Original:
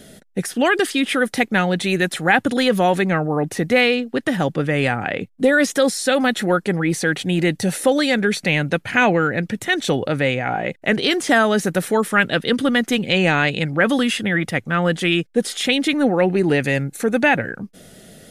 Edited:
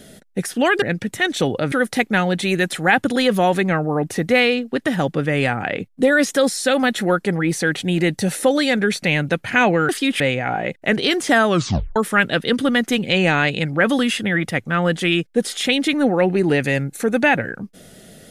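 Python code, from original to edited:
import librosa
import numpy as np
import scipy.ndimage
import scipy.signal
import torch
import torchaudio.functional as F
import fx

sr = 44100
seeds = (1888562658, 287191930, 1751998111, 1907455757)

y = fx.edit(x, sr, fx.swap(start_s=0.82, length_s=0.31, other_s=9.3, other_length_s=0.9),
    fx.tape_stop(start_s=11.48, length_s=0.48), tone=tone)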